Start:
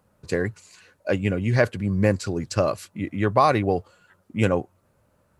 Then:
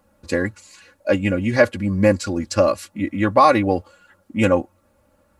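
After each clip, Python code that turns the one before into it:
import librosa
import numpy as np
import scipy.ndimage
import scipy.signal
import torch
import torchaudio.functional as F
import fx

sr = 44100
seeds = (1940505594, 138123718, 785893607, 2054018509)

y = x + 0.77 * np.pad(x, (int(3.6 * sr / 1000.0), 0))[:len(x)]
y = y * librosa.db_to_amplitude(2.5)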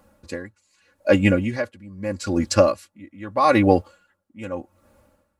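y = x * 10.0 ** (-23 * (0.5 - 0.5 * np.cos(2.0 * np.pi * 0.81 * np.arange(len(x)) / sr)) / 20.0)
y = y * librosa.db_to_amplitude(4.0)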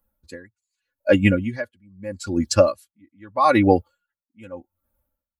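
y = fx.bin_expand(x, sr, power=1.5)
y = y * librosa.db_to_amplitude(2.0)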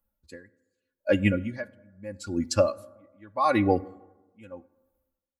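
y = fx.rev_plate(x, sr, seeds[0], rt60_s=1.1, hf_ratio=0.4, predelay_ms=0, drr_db=18.0)
y = y * librosa.db_to_amplitude(-6.5)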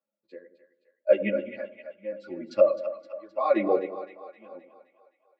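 y = fx.chorus_voices(x, sr, voices=2, hz=1.2, base_ms=12, depth_ms=3.0, mix_pct=55)
y = fx.cabinet(y, sr, low_hz=230.0, low_slope=24, high_hz=3400.0, hz=(260.0, 380.0, 610.0, 930.0, 1600.0, 3000.0), db=(-5, 5, 9, -7, -6, -4))
y = fx.echo_split(y, sr, split_hz=570.0, low_ms=93, high_ms=260, feedback_pct=52, wet_db=-11)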